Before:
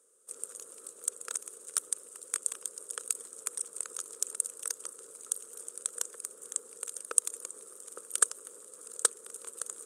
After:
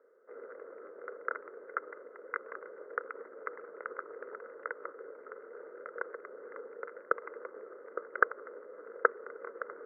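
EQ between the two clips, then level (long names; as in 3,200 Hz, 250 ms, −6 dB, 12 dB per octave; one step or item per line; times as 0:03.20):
high-pass filter 270 Hz 12 dB per octave
dynamic equaliser 1,200 Hz, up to +4 dB, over −57 dBFS, Q 2.1
Chebyshev low-pass with heavy ripple 2,100 Hz, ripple 6 dB
+11.5 dB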